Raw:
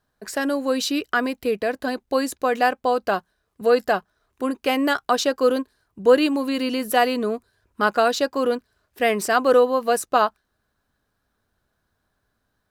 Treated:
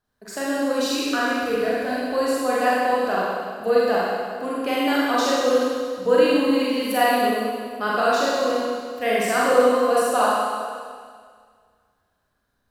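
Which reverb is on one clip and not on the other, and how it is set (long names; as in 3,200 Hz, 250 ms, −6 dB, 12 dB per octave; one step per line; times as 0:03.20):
four-comb reverb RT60 1.9 s, combs from 32 ms, DRR −7 dB
level −7 dB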